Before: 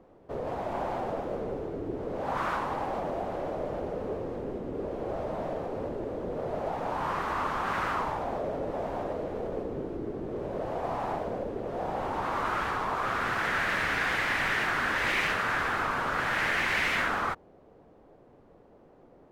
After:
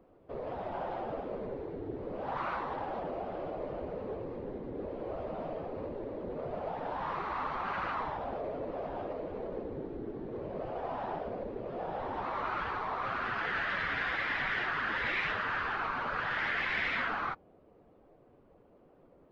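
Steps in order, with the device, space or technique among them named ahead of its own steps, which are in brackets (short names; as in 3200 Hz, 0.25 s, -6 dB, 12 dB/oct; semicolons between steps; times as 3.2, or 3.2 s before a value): clip after many re-uploads (LPF 4300 Hz 24 dB/oct; bin magnitudes rounded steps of 15 dB); high shelf 9700 Hz +4.5 dB; gain -4.5 dB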